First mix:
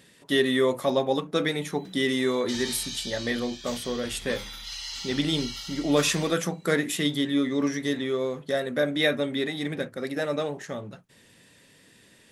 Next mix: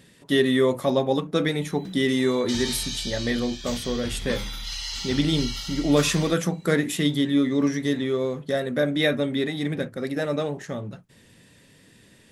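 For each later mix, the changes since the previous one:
background +3.5 dB; master: add low shelf 250 Hz +8.5 dB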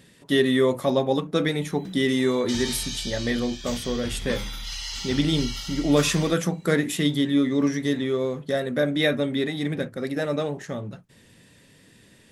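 background: add bell 4100 Hz -3.5 dB 0.23 oct

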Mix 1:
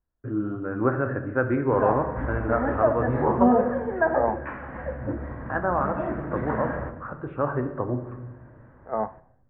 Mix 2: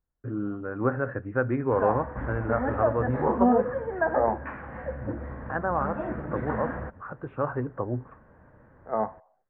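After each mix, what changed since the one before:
reverb: off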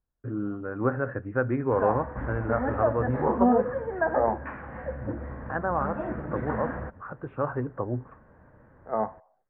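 master: add air absorption 84 m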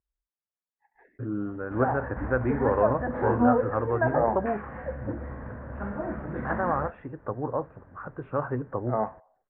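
first voice: entry +0.95 s

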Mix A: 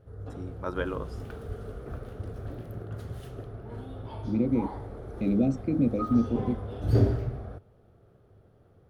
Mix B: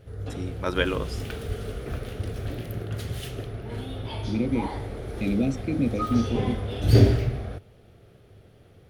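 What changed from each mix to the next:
first voice +6.0 dB; background +6.0 dB; master: add resonant high shelf 1700 Hz +9 dB, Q 1.5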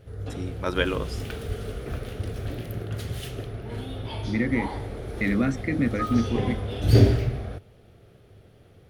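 second voice: remove Chebyshev band-stop 750–2400 Hz, order 4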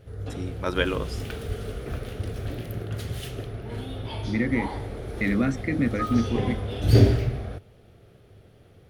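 none

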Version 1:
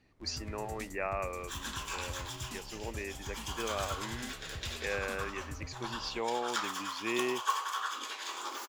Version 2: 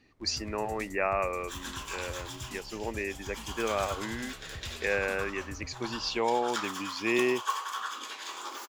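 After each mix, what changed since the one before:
speech +6.5 dB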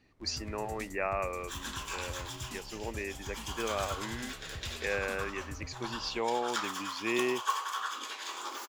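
speech -4.0 dB

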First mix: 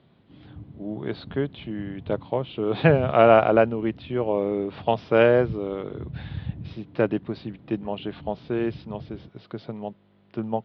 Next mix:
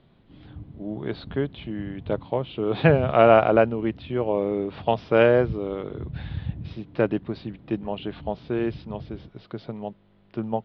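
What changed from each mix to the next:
master: remove HPF 77 Hz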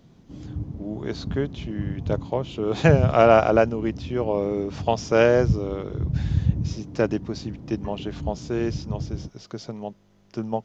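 background +9.5 dB; master: remove steep low-pass 4000 Hz 48 dB/oct

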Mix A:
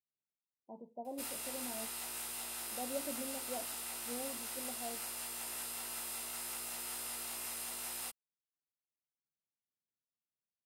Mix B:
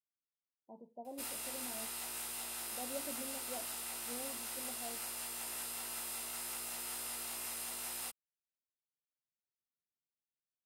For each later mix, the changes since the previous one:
speech -3.5 dB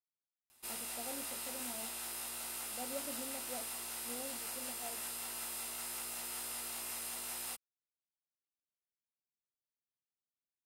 background: entry -0.55 s

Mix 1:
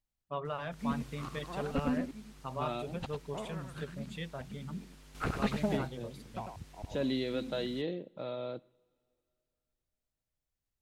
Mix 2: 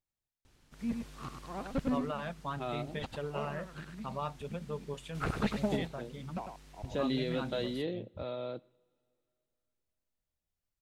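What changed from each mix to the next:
first voice: entry +1.60 s; background: add high shelf 9400 Hz -3 dB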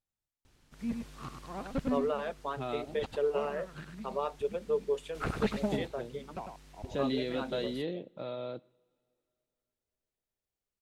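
first voice: add resonant high-pass 420 Hz, resonance Q 3.9

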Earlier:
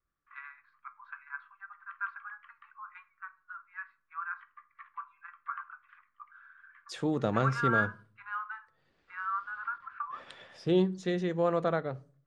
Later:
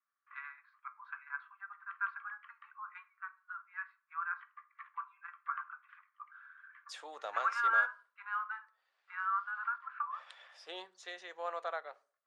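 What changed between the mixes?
second voice -4.5 dB; master: add HPF 700 Hz 24 dB/oct

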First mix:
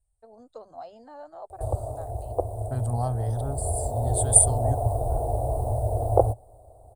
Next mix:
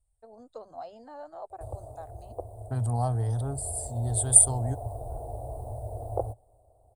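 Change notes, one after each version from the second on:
background -11.0 dB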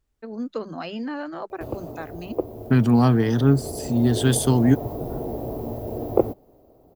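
master: remove EQ curve 110 Hz 0 dB, 160 Hz -26 dB, 340 Hz -22 dB, 710 Hz -2 dB, 1200 Hz -16 dB, 2600 Hz -29 dB, 3800 Hz -15 dB, 6100 Hz -19 dB, 9000 Hz +14 dB, 13000 Hz -20 dB

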